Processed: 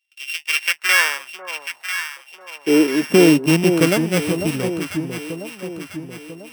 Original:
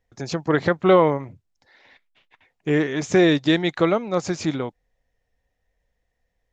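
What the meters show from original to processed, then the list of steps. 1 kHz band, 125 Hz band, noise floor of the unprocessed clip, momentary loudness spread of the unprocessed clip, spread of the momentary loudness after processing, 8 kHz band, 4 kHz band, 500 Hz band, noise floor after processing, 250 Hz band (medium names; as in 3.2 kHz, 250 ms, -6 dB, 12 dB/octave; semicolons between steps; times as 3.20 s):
-2.5 dB, +3.0 dB, -76 dBFS, 13 LU, 18 LU, no reading, +7.5 dB, +0.5 dB, -50 dBFS, +4.5 dB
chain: sorted samples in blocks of 16 samples; high-pass sweep 2.8 kHz -> 79 Hz, 0.34–4.34 s; echo whose repeats swap between lows and highs 497 ms, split 950 Hz, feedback 67%, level -6 dB; trim +1 dB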